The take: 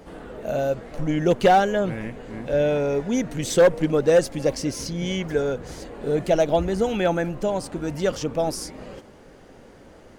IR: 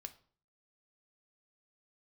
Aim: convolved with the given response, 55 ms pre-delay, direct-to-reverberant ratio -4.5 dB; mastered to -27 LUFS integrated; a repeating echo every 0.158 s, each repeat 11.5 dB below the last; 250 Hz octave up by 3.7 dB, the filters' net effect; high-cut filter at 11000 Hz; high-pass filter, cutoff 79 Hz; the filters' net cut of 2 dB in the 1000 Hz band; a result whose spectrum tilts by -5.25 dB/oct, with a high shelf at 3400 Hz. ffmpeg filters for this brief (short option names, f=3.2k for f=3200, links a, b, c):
-filter_complex "[0:a]highpass=79,lowpass=11k,equalizer=f=250:t=o:g=5.5,equalizer=f=1k:t=o:g=-3.5,highshelf=f=3.4k:g=-4.5,aecho=1:1:158|316|474:0.266|0.0718|0.0194,asplit=2[a][b];[1:a]atrim=start_sample=2205,adelay=55[c];[b][c]afir=irnorm=-1:irlink=0,volume=9.5dB[d];[a][d]amix=inputs=2:normalize=0,volume=-11dB"